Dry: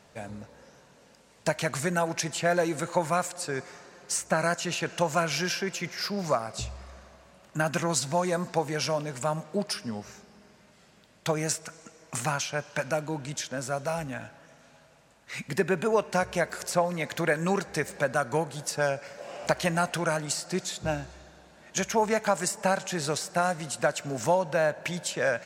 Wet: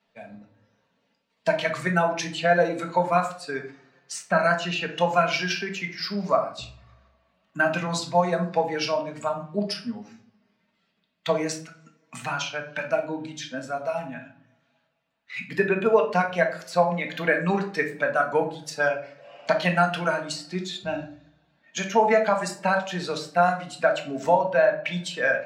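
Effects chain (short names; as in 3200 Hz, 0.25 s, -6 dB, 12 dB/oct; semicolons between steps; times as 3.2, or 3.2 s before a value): per-bin expansion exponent 1.5; tilt +1.5 dB/oct; in parallel at +2 dB: level quantiser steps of 10 dB; on the sum: three-band isolator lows -13 dB, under 150 Hz, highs -21 dB, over 4300 Hz; shoebox room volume 500 m³, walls furnished, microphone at 1.6 m; gain +1 dB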